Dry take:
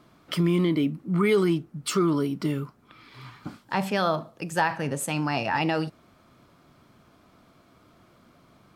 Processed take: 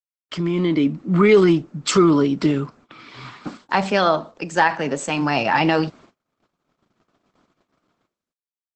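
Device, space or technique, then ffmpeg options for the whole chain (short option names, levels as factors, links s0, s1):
video call: -filter_complex "[0:a]asplit=3[s0][s1][s2];[s0]afade=t=out:st=3.32:d=0.02[s3];[s1]highpass=180,afade=t=in:st=3.32:d=0.02,afade=t=out:st=5.2:d=0.02[s4];[s2]afade=t=in:st=5.2:d=0.02[s5];[s3][s4][s5]amix=inputs=3:normalize=0,highpass=160,dynaudnorm=f=210:g=7:m=3.16,agate=range=0.00178:threshold=0.00562:ratio=16:detection=peak" -ar 48000 -c:a libopus -b:a 12k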